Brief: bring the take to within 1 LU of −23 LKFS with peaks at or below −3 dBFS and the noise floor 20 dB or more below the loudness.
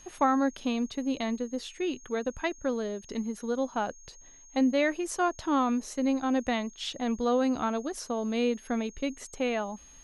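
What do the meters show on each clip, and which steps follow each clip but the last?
interfering tone 6,500 Hz; level of the tone −52 dBFS; integrated loudness −30.0 LKFS; sample peak −14.0 dBFS; target loudness −23.0 LKFS
→ notch filter 6,500 Hz, Q 30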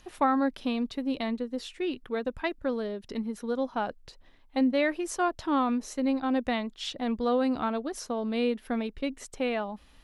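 interfering tone none found; integrated loudness −30.0 LKFS; sample peak −14.0 dBFS; target loudness −23.0 LKFS
→ level +7 dB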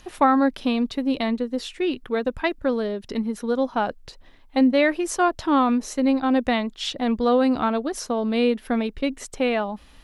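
integrated loudness −23.0 LKFS; sample peak −7.0 dBFS; background noise floor −50 dBFS

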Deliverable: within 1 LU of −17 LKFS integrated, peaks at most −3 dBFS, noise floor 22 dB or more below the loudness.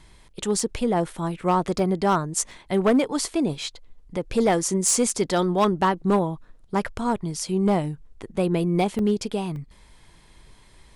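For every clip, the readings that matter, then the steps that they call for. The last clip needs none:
share of clipped samples 0.6%; peaks flattened at −13.5 dBFS; number of dropouts 4; longest dropout 1.5 ms; integrated loudness −24.0 LKFS; sample peak −13.5 dBFS; target loudness −17.0 LKFS
→ clipped peaks rebuilt −13.5 dBFS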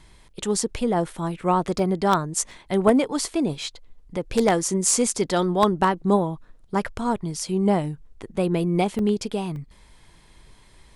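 share of clipped samples 0.0%; number of dropouts 4; longest dropout 1.5 ms
→ repair the gap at 0:01.79/0:02.51/0:08.99/0:09.56, 1.5 ms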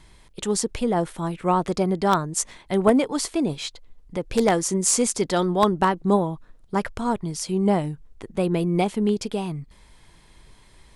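number of dropouts 0; integrated loudness −23.5 LKFS; sample peak −4.5 dBFS; target loudness −17.0 LKFS
→ level +6.5 dB
brickwall limiter −3 dBFS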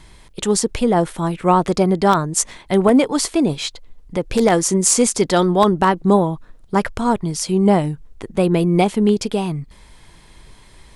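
integrated loudness −17.5 LKFS; sample peak −3.0 dBFS; background noise floor −46 dBFS

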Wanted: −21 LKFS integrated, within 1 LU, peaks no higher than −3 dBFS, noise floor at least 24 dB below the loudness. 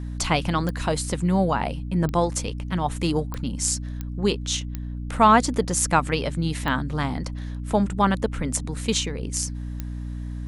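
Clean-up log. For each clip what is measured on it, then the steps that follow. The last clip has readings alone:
number of clicks 7; mains hum 60 Hz; hum harmonics up to 300 Hz; level of the hum −29 dBFS; integrated loudness −24.5 LKFS; sample peak −4.5 dBFS; target loudness −21.0 LKFS
→ click removal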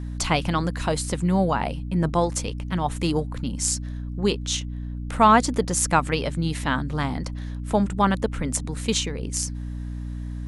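number of clicks 0; mains hum 60 Hz; hum harmonics up to 300 Hz; level of the hum −29 dBFS
→ mains-hum notches 60/120/180/240/300 Hz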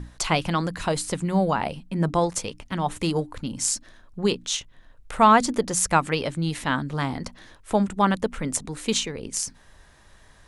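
mains hum none found; integrated loudness −24.5 LKFS; sample peak −5.5 dBFS; target loudness −21.0 LKFS
→ level +3.5 dB
brickwall limiter −3 dBFS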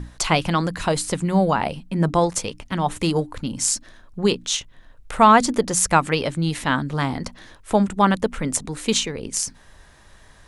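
integrated loudness −21.5 LKFS; sample peak −3.0 dBFS; background noise floor −50 dBFS

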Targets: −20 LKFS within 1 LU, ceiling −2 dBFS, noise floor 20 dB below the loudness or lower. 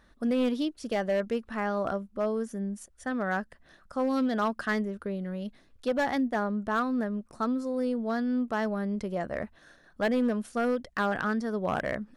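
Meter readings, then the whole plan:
share of clipped samples 1.0%; peaks flattened at −21.0 dBFS; integrated loudness −30.5 LKFS; sample peak −21.0 dBFS; target loudness −20.0 LKFS
→ clipped peaks rebuilt −21 dBFS
level +10.5 dB

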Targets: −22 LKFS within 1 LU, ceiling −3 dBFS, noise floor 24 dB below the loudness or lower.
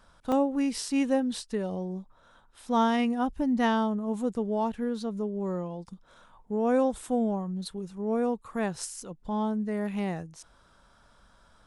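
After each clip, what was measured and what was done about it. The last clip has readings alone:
number of dropouts 1; longest dropout 2.0 ms; integrated loudness −29.5 LKFS; sample peak −14.0 dBFS; target loudness −22.0 LKFS
→ repair the gap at 0:00.32, 2 ms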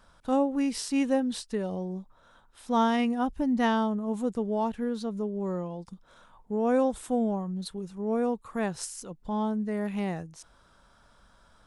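number of dropouts 0; integrated loudness −29.5 LKFS; sample peak −14.0 dBFS; target loudness −22.0 LKFS
→ level +7.5 dB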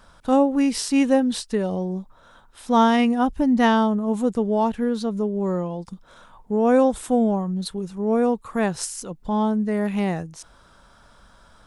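integrated loudness −22.0 LKFS; sample peak −6.5 dBFS; background noise floor −53 dBFS

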